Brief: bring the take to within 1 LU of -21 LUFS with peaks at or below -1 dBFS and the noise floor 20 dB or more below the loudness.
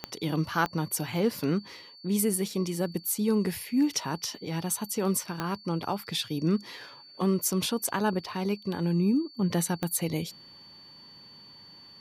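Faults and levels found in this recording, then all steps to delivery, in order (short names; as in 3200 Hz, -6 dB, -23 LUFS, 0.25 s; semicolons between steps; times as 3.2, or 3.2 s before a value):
clicks 4; steady tone 4500 Hz; tone level -49 dBFS; loudness -29.0 LUFS; peak -12.5 dBFS; loudness target -21.0 LUFS
-> de-click; notch 4500 Hz, Q 30; gain +8 dB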